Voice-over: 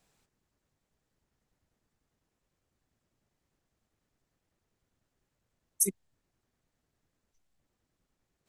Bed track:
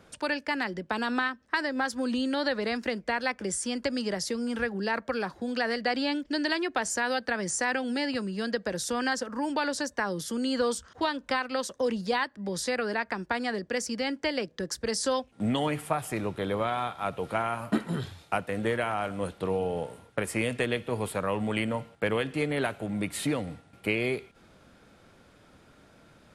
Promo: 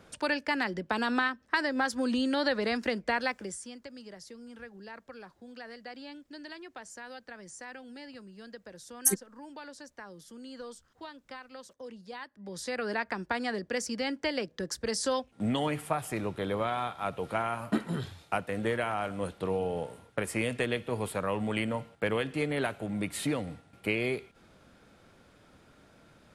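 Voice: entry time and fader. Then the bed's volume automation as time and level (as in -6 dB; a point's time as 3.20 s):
3.25 s, +2.5 dB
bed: 3.21 s 0 dB
3.82 s -16.5 dB
12.08 s -16.5 dB
12.91 s -2 dB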